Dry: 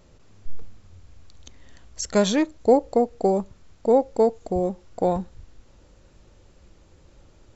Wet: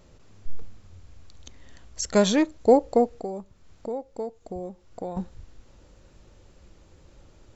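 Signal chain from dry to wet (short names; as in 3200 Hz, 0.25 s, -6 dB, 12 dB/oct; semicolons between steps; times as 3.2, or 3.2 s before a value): 3.13–5.17 compressor 2:1, threshold -41 dBFS, peak gain reduction 15 dB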